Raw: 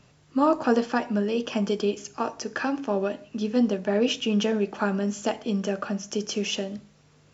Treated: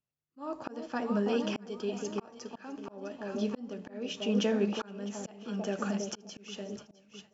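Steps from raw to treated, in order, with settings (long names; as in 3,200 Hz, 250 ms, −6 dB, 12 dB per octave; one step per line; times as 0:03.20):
delay that swaps between a low-pass and a high-pass 328 ms, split 870 Hz, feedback 66%, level −7 dB
downward expander −34 dBFS
volume swells 570 ms
level −4 dB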